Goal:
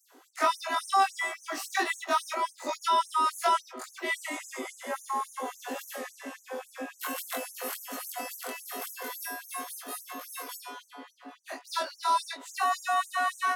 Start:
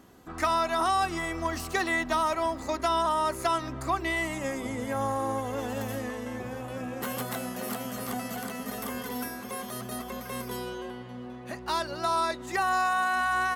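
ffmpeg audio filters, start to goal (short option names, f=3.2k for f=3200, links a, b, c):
-af "afftfilt=real='re':imag='-im':win_size=2048:overlap=0.75,afftfilt=real='re*gte(b*sr/1024,230*pow(5900/230,0.5+0.5*sin(2*PI*3.6*pts/sr)))':imag='im*gte(b*sr/1024,230*pow(5900/230,0.5+0.5*sin(2*PI*3.6*pts/sr)))':win_size=1024:overlap=0.75,volume=5.5dB"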